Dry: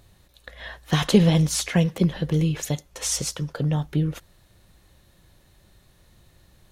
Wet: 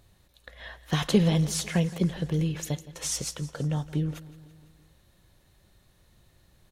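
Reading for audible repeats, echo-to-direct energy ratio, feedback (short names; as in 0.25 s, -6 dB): 4, -16.0 dB, 60%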